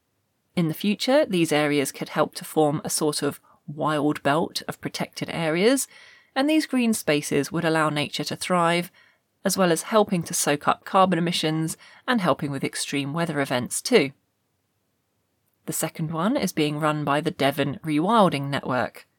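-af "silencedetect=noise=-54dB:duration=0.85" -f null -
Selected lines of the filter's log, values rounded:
silence_start: 14.13
silence_end: 15.47 | silence_duration: 1.34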